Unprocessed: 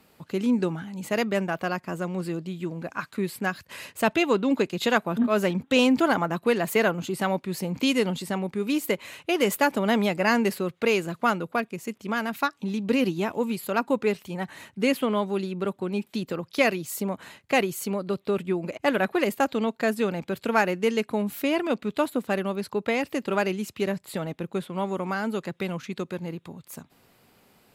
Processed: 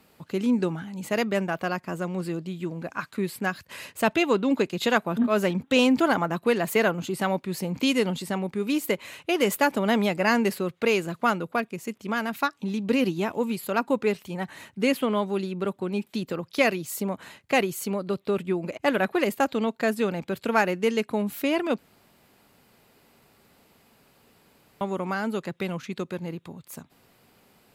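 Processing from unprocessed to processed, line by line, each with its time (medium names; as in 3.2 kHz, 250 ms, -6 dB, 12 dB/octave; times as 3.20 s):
21.78–24.81 s: room tone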